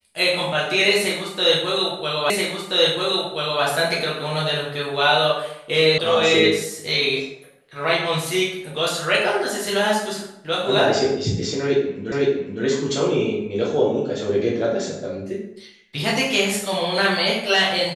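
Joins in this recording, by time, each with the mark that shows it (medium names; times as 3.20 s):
2.30 s: repeat of the last 1.33 s
5.98 s: sound stops dead
12.12 s: repeat of the last 0.51 s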